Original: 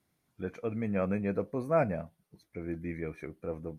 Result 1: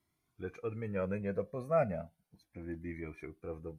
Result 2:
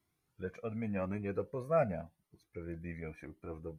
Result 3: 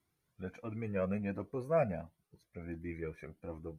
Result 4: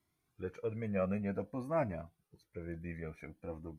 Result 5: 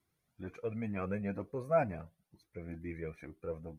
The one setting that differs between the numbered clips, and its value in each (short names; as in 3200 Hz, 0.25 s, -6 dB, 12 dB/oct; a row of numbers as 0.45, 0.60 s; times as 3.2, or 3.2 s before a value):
cascading flanger, rate: 0.33, 0.88, 1.4, 0.53, 2.1 Hz